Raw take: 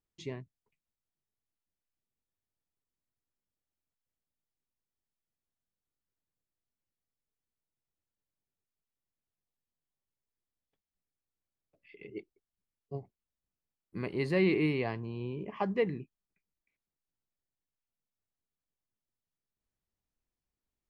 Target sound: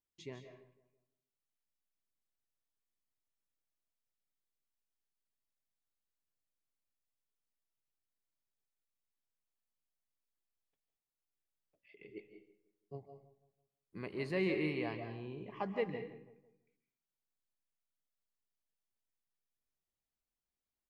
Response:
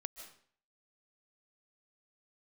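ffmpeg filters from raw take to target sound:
-filter_complex "[0:a]lowshelf=f=250:g=-4.5,asplit=2[a][b];[b]adelay=165,lowpass=f=1.8k:p=1,volume=-16dB,asplit=2[c][d];[d]adelay=165,lowpass=f=1.8k:p=1,volume=0.44,asplit=2[e][f];[f]adelay=165,lowpass=f=1.8k:p=1,volume=0.44,asplit=2[g][h];[h]adelay=165,lowpass=f=1.8k:p=1,volume=0.44[i];[a][c][e][g][i]amix=inputs=5:normalize=0[j];[1:a]atrim=start_sample=2205[k];[j][k]afir=irnorm=-1:irlink=0,volume=-2dB"

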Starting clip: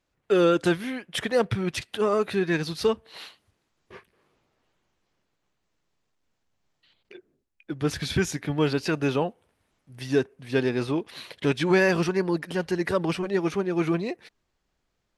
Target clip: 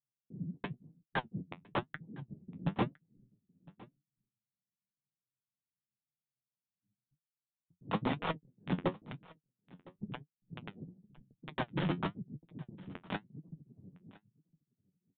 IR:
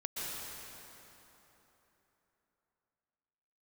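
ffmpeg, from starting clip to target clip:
-filter_complex "[0:a]afftfilt=real='real(if(lt(b,272),68*(eq(floor(b/68),0)*3+eq(floor(b/68),1)*2+eq(floor(b/68),2)*1+eq(floor(b/68),3)*0)+mod(b,68),b),0)':imag='imag(if(lt(b,272),68*(eq(floor(b/68),0)*3+eq(floor(b/68),1)*2+eq(floor(b/68),2)*1+eq(floor(b/68),3)*0)+mod(b,68),b),0)':win_size=2048:overlap=0.75,highpass=f=120:w=0.5412,highpass=f=120:w=1.3066,anlmdn=3.98,lowpass=f=1.1k:w=0.5412,lowpass=f=1.1k:w=1.3066,equalizer=f=160:t=o:w=0.83:g=8,acrossover=split=300[a][b];[b]acrusher=bits=6:mix=0:aa=0.000001[c];[a][c]amix=inputs=2:normalize=0,flanger=delay=6.2:depth=5.1:regen=50:speed=0.96:shape=sinusoidal,aresample=8000,asoftclip=type=tanh:threshold=-39dB,aresample=44100,aecho=1:1:1009:0.075,volume=15.5dB"

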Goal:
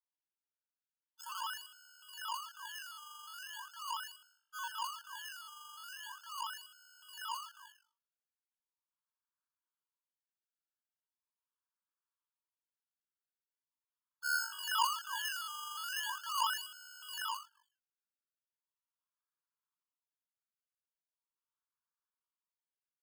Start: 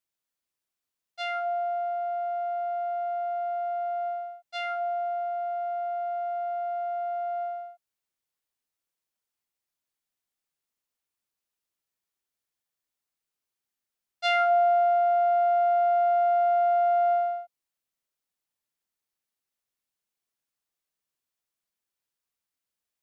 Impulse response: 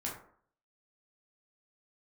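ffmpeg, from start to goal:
-filter_complex "[0:a]equalizer=f=600:w=3.1:g=-10,asplit=5[a][b][c][d][e];[b]adelay=85,afreqshift=-48,volume=-12.5dB[f];[c]adelay=170,afreqshift=-96,volume=-20.7dB[g];[d]adelay=255,afreqshift=-144,volume=-28.9dB[h];[e]adelay=340,afreqshift=-192,volume=-37dB[i];[a][f][g][h][i]amix=inputs=5:normalize=0,lowpass=f=3.1k:t=q:w=0.5098,lowpass=f=3.1k:t=q:w=0.6013,lowpass=f=3.1k:t=q:w=0.9,lowpass=f=3.1k:t=q:w=2.563,afreqshift=-3600,acrusher=samples=29:mix=1:aa=0.000001:lfo=1:lforange=29:lforate=0.4,afftfilt=real='re*eq(mod(floor(b*sr/1024/880),2),1)':imag='im*eq(mod(floor(b*sr/1024/880),2),1)':win_size=1024:overlap=0.75,volume=-2dB"

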